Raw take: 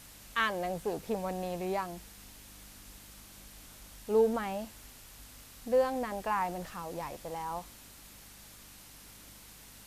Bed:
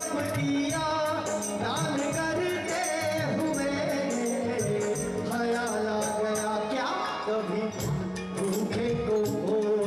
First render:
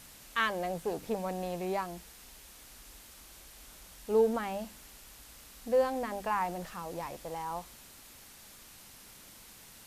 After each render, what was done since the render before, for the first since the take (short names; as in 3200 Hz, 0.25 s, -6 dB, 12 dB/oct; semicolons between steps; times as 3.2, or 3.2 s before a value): de-hum 50 Hz, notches 6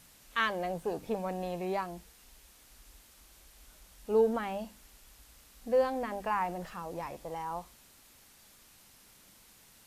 noise print and reduce 6 dB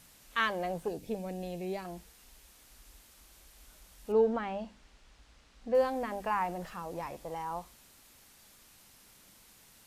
0.88–1.85 bell 1100 Hz -14.5 dB 1.2 oct; 4.12–5.75 air absorption 110 m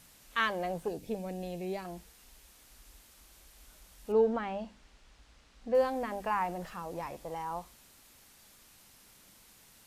nothing audible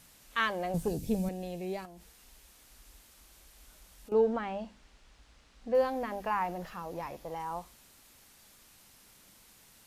0.74–1.29 tone controls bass +14 dB, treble +9 dB; 1.85–4.12 compressor, threshold -47 dBFS; 5.73–7.4 bell 8300 Hz -8.5 dB 0.29 oct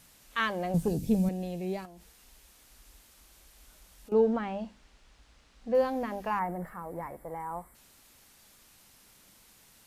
6.39–7.75 spectral gain 2300–7400 Hz -18 dB; dynamic EQ 180 Hz, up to +6 dB, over -44 dBFS, Q 0.85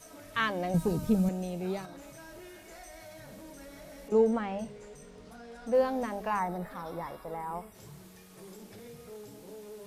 add bed -20.5 dB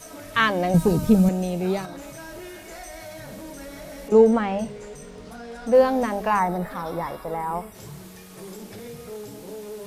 gain +9.5 dB